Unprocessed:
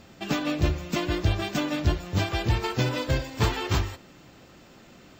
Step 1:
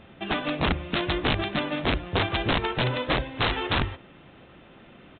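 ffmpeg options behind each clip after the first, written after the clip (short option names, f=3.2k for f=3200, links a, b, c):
-af "bandreject=f=60:t=h:w=6,bandreject=f=120:t=h:w=6,bandreject=f=180:t=h:w=6,bandreject=f=240:t=h:w=6,bandreject=f=300:t=h:w=6,aresample=8000,aeval=exprs='(mod(8.91*val(0)+1,2)-1)/8.91':c=same,aresample=44100,volume=1.5dB"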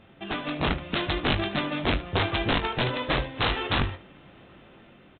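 -filter_complex "[0:a]dynaudnorm=f=160:g=7:m=4dB,asplit=2[a][b];[b]aecho=0:1:21|75:0.376|0.168[c];[a][c]amix=inputs=2:normalize=0,volume=-5dB"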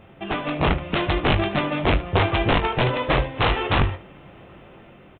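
-af "equalizer=f=250:t=o:w=0.67:g=-5,equalizer=f=1.6k:t=o:w=0.67:g=-4,equalizer=f=4k:t=o:w=0.67:g=-11,volume=7.5dB"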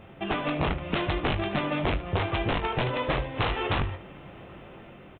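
-af "acompressor=threshold=-24dB:ratio=6"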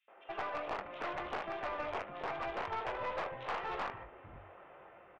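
-filter_complex "[0:a]acrossover=split=460 2200:gain=0.0794 1 0.126[a][b][c];[a][b][c]amix=inputs=3:normalize=0,acrossover=split=250|3300[d][e][f];[e]adelay=80[g];[d]adelay=540[h];[h][g][f]amix=inputs=3:normalize=0,aeval=exprs='(tanh(25.1*val(0)+0.3)-tanh(0.3))/25.1':c=same,volume=-3dB"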